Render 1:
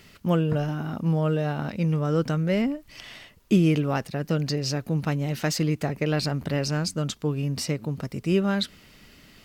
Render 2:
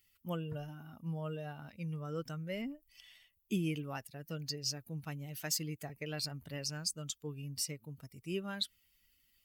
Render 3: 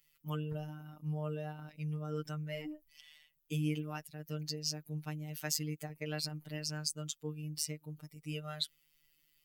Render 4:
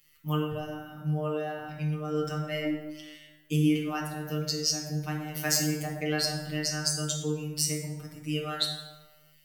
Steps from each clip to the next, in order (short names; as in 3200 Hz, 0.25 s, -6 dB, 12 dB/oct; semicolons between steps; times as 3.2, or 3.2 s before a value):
per-bin expansion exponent 1.5; pre-emphasis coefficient 0.8
robotiser 152 Hz; gain +2 dB
plate-style reverb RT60 1.2 s, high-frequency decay 0.55×, DRR -1 dB; gain +7 dB